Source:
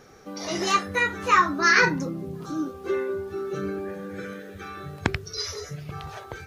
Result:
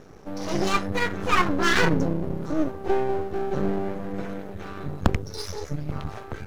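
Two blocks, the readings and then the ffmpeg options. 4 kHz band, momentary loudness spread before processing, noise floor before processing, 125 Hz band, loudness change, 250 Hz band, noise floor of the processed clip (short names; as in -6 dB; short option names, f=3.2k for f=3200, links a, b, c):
-1.5 dB, 19 LU, -43 dBFS, +5.5 dB, -1.5 dB, +4.0 dB, -41 dBFS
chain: -af "tiltshelf=f=630:g=6.5,aeval=exprs='max(val(0),0)':c=same,volume=5dB"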